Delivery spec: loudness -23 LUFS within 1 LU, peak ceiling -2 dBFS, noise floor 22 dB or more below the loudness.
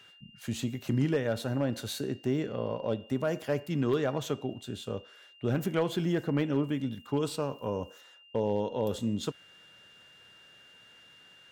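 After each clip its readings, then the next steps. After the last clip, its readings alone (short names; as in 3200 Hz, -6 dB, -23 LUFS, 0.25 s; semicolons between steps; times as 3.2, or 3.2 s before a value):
clipped 0.3%; flat tops at -19.5 dBFS; steady tone 2800 Hz; tone level -55 dBFS; loudness -32.0 LUFS; peak -19.5 dBFS; loudness target -23.0 LUFS
-> clip repair -19.5 dBFS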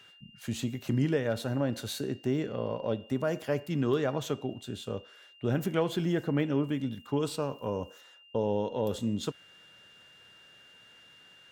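clipped 0.0%; steady tone 2800 Hz; tone level -55 dBFS
-> notch 2800 Hz, Q 30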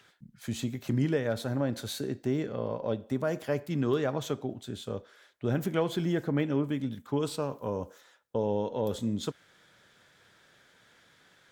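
steady tone none; loudness -32.0 LUFS; peak -15.5 dBFS; loudness target -23.0 LUFS
-> gain +9 dB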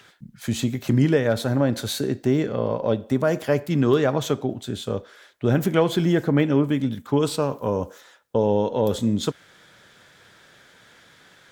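loudness -23.0 LUFS; peak -6.5 dBFS; noise floor -54 dBFS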